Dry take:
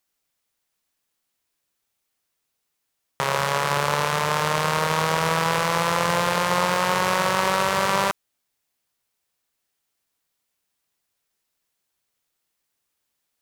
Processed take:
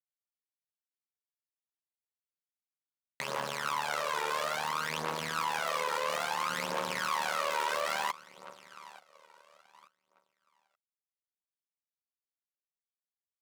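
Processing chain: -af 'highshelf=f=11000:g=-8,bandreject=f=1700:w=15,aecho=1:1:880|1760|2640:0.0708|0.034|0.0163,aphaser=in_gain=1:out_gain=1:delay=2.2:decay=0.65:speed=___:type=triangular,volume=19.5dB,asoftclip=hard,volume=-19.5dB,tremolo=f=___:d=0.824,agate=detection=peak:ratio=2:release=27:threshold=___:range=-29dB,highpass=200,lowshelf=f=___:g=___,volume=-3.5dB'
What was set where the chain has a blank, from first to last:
0.59, 76, -49dB, 490, -9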